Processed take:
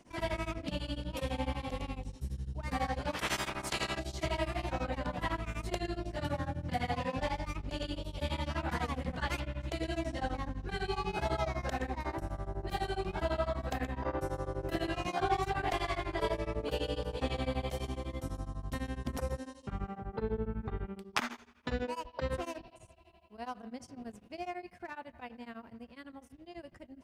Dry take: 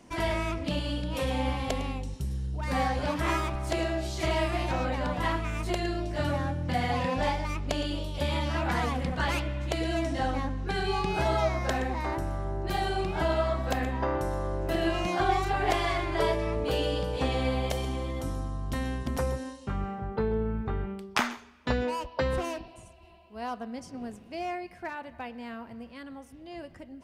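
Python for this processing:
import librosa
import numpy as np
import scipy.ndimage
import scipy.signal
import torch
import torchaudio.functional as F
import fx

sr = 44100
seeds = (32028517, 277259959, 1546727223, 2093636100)

y = fx.spec_clip(x, sr, under_db=23, at=(3.13, 3.98), fade=0.02)
y = fx.doubler(y, sr, ms=13.0, db=-5.0, at=(14.17, 15.73))
y = y * np.abs(np.cos(np.pi * 12.0 * np.arange(len(y)) / sr))
y = y * 10.0 ** (-3.5 / 20.0)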